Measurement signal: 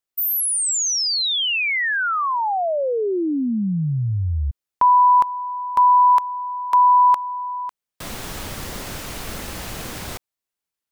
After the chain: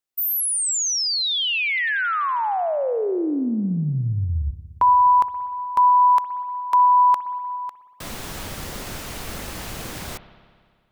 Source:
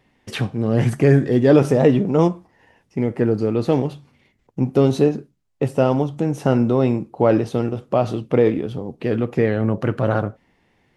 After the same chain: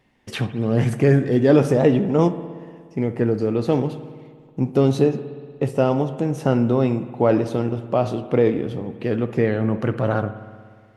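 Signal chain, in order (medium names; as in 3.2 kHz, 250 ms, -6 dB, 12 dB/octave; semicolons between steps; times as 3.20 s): spring tank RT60 1.9 s, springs 59 ms, chirp 60 ms, DRR 12 dB; trim -1.5 dB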